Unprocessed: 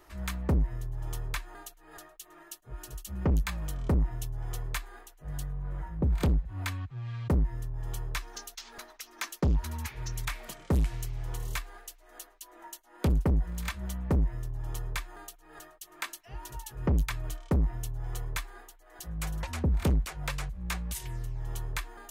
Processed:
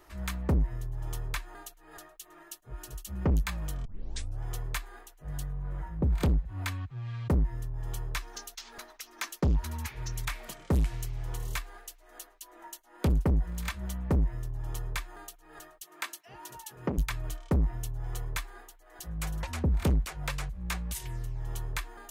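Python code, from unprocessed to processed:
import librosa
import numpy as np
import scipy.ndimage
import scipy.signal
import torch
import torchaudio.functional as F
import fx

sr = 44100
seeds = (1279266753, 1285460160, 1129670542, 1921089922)

y = fx.highpass(x, sr, hz=180.0, slope=12, at=(15.83, 16.98))
y = fx.edit(y, sr, fx.tape_start(start_s=3.85, length_s=0.56), tone=tone)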